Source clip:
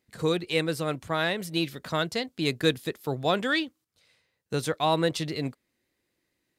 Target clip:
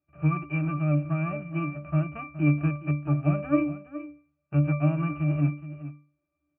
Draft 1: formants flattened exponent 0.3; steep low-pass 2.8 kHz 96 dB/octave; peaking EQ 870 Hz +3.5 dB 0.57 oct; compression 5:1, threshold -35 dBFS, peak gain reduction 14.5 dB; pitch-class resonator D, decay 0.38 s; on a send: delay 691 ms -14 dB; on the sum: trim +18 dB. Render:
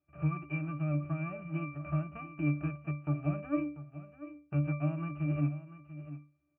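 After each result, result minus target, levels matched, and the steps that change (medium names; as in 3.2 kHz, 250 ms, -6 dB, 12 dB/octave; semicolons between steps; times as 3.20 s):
echo 272 ms late; compression: peak gain reduction +9 dB
change: delay 419 ms -14 dB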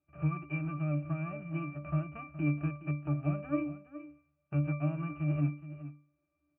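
compression: peak gain reduction +9 dB
change: compression 5:1, threshold -23.5 dBFS, peak gain reduction 5 dB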